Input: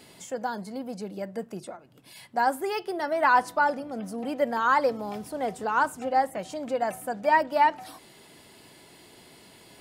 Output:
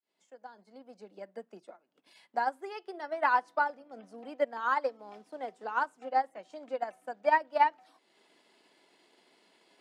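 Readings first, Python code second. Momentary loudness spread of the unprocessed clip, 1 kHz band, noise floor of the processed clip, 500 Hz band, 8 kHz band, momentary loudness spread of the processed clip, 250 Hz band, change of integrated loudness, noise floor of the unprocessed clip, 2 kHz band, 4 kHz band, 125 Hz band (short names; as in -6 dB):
15 LU, -5.5 dB, -73 dBFS, -7.0 dB, under -20 dB, 21 LU, -14.0 dB, -4.5 dB, -53 dBFS, -6.0 dB, -9.5 dB, under -20 dB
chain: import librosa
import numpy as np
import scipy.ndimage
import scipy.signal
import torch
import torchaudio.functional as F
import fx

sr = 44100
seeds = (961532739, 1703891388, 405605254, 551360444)

y = fx.fade_in_head(x, sr, length_s=1.27)
y = fx.transient(y, sr, attack_db=5, sustain_db=-6)
y = scipy.signal.sosfilt(scipy.signal.bessel(8, 330.0, 'highpass', norm='mag', fs=sr, output='sos'), y)
y = fx.air_absorb(y, sr, metres=71.0)
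y = fx.upward_expand(y, sr, threshold_db=-26.0, expansion=1.5)
y = y * 10.0 ** (-4.5 / 20.0)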